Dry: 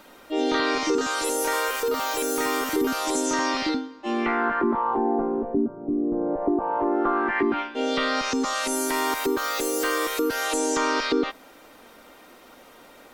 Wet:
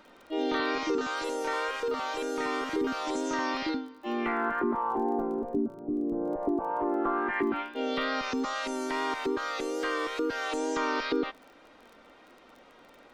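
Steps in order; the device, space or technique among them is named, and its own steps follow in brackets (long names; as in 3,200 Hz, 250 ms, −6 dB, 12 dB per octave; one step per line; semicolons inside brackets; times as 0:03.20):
lo-fi chain (low-pass filter 4,200 Hz 12 dB per octave; tape wow and flutter 27 cents; surface crackle 23 per second −38 dBFS)
level −5.5 dB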